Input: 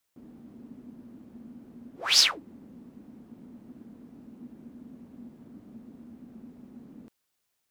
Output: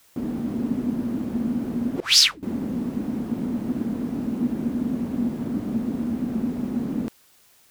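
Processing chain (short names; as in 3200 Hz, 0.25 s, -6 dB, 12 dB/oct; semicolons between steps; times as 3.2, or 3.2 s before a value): 2–2.43 passive tone stack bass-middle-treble 6-0-2; maximiser +23 dB; gain -1.5 dB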